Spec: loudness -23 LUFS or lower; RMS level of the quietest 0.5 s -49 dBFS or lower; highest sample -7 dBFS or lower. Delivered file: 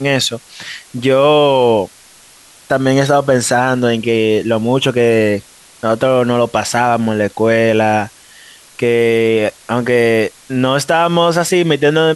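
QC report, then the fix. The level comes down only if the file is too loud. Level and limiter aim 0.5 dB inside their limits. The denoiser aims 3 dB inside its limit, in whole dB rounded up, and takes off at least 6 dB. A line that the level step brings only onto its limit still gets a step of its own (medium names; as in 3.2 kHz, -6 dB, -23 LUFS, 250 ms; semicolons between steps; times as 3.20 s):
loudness -13.5 LUFS: fail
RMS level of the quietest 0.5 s -43 dBFS: fail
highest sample -1.5 dBFS: fail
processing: trim -10 dB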